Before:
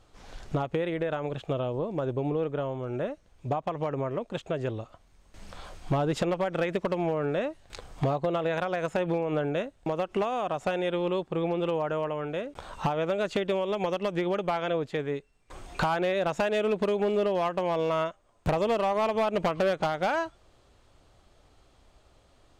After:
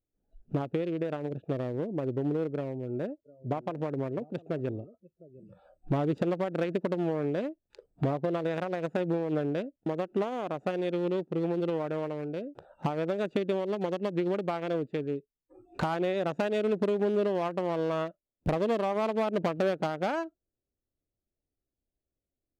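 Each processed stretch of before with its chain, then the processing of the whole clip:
2.55–5.65 HPF 53 Hz + echo 0.707 s -18 dB
whole clip: Wiener smoothing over 41 samples; spectral noise reduction 26 dB; bell 280 Hz +6 dB 1.5 oct; gain -3.5 dB

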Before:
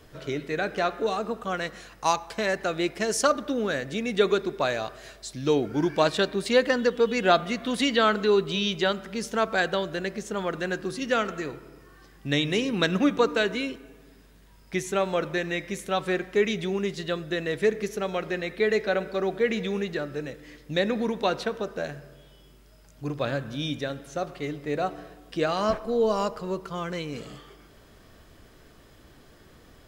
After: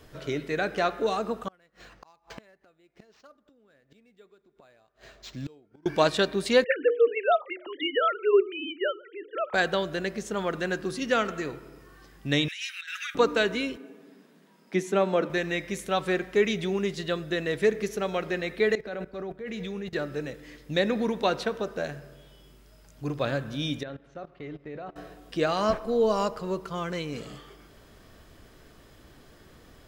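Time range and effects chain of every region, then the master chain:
1.48–5.86 flipped gate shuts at -25 dBFS, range -31 dB + tremolo triangle 1.3 Hz, depth 45% + decimation joined by straight lines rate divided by 4×
6.64–9.54 sine-wave speech + Bessel high-pass 310 Hz + notches 60/120/180/240/300/360/420/480 Hz
12.48–13.15 steep high-pass 1400 Hz 72 dB/oct + negative-ratio compressor -37 dBFS
13.77–15.3 steep high-pass 180 Hz 48 dB/oct + tilt -2 dB/oct
18.75–19.93 low shelf 170 Hz +7 dB + level quantiser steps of 17 dB + three-band expander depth 100%
23.83–24.96 LPF 2800 Hz + level quantiser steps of 19 dB
whole clip: dry

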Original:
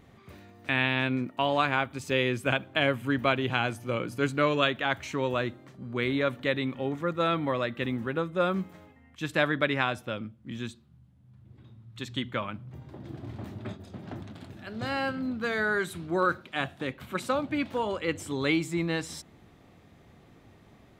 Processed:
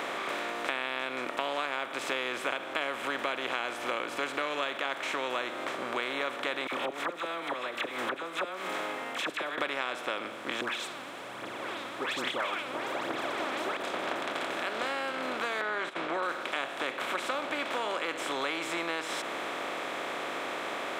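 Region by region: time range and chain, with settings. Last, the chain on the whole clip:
6.67–9.58 high shelf 9200 Hz +8.5 dB + flipped gate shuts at -19 dBFS, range -27 dB + dispersion lows, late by 56 ms, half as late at 1200 Hz
10.61–13.77 dispersion highs, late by 0.138 s, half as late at 1900 Hz + phaser 1.2 Hz, delay 4 ms, feedback 68%
15.61–16.23 LPF 2400 Hz + gate -41 dBFS, range -28 dB
whole clip: per-bin compression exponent 0.4; HPF 450 Hz 12 dB/oct; compressor 4:1, threshold -29 dBFS; gain -1 dB

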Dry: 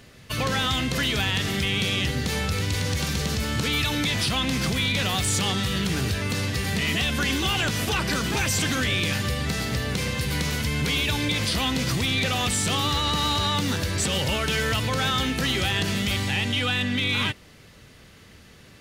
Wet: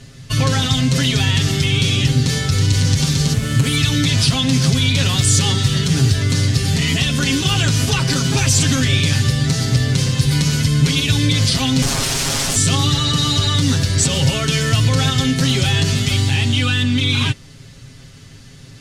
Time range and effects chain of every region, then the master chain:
3.33–3.76 median filter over 9 samples + high shelf 5900 Hz +9 dB
11.82–12.56 HPF 40 Hz 24 dB/oct + tilt -2.5 dB/oct + wrapped overs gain 21.5 dB
whole clip: LPF 7700 Hz 12 dB/oct; tone controls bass +11 dB, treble +11 dB; comb 7.4 ms, depth 86%

